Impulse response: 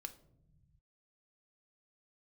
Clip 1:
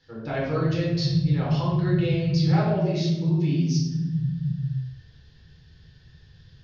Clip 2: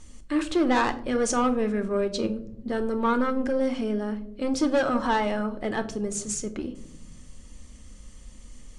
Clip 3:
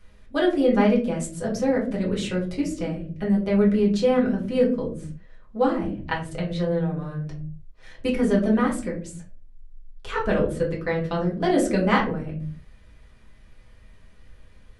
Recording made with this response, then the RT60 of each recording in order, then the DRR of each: 2; 1.1 s, 0.75 s, 0.50 s; -6.0 dB, 7.5 dB, -5.0 dB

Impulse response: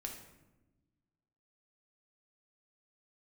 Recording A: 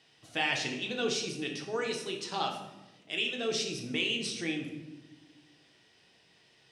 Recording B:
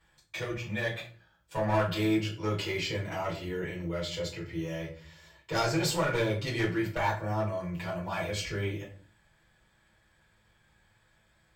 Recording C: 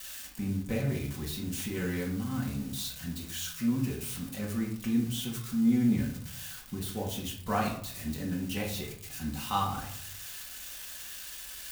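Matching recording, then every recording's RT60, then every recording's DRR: A; 1.1 s, 0.45 s, 0.60 s; 1.0 dB, -7.0 dB, -2.5 dB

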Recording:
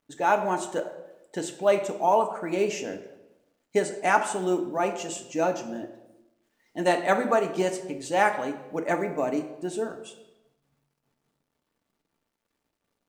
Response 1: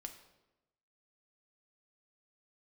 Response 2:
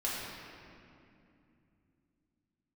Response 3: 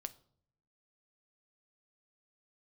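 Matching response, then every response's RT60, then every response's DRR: 1; 1.0 s, 2.6 s, 0.60 s; 4.5 dB, -7.5 dB, 10.5 dB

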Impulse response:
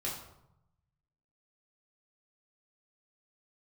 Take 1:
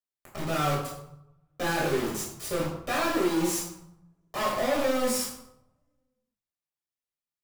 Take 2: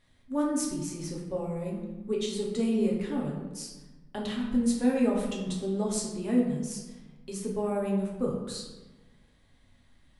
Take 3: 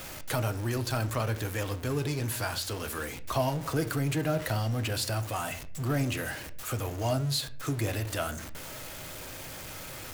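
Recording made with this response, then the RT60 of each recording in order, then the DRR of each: 1; 0.85 s, 1.2 s, no single decay rate; -5.5 dB, -3.5 dB, 9.5 dB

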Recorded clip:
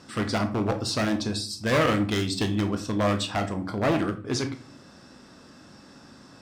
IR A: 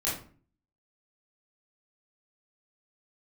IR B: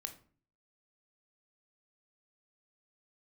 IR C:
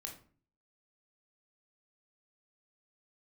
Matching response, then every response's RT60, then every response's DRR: B; 0.45 s, 0.45 s, 0.45 s; -8.5 dB, 6.5 dB, 1.5 dB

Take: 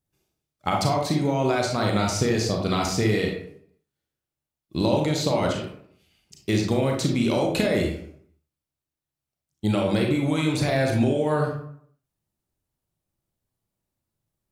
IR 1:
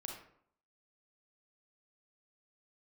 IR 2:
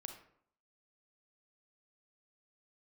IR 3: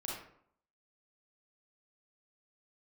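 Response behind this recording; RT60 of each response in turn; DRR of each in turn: 1; 0.65 s, 0.65 s, 0.65 s; 0.5 dB, 5.0 dB, -4.5 dB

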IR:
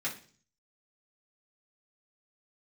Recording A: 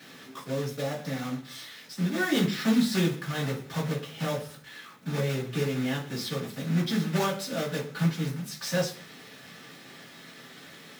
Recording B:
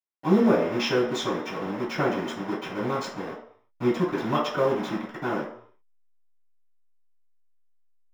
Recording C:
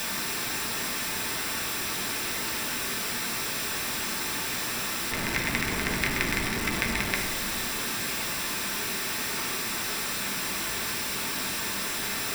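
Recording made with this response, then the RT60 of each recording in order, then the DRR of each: A; 0.45 s, 0.60 s, 1.2 s; -6.5 dB, -15.0 dB, 0.0 dB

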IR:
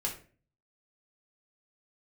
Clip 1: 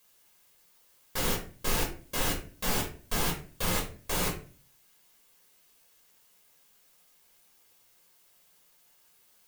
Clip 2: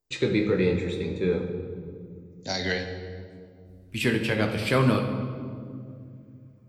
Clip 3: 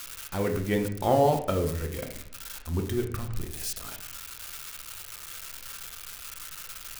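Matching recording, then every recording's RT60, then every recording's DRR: 1; 0.40 s, 2.3 s, 0.65 s; -1.5 dB, 2.5 dB, 3.5 dB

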